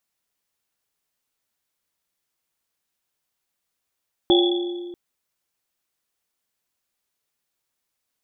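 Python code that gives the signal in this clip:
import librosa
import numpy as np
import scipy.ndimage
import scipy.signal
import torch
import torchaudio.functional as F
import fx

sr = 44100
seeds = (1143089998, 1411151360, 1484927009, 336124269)

y = fx.risset_drum(sr, seeds[0], length_s=0.64, hz=350.0, decay_s=1.95, noise_hz=3400.0, noise_width_hz=150.0, noise_pct=30)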